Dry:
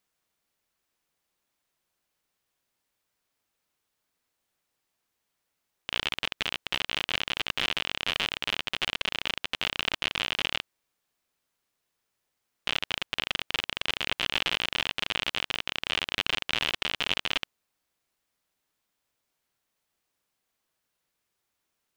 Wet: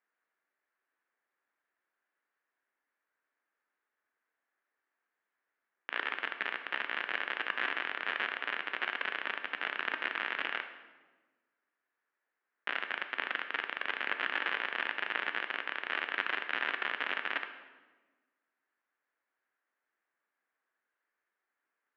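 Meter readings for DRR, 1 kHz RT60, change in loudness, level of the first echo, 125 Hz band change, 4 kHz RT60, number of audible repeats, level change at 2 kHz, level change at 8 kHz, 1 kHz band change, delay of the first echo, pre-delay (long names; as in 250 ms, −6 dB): 7.0 dB, 1.2 s, −5.5 dB, no echo audible, below −20 dB, 0.95 s, no echo audible, −0.5 dB, below −25 dB, −0.5 dB, no echo audible, 10 ms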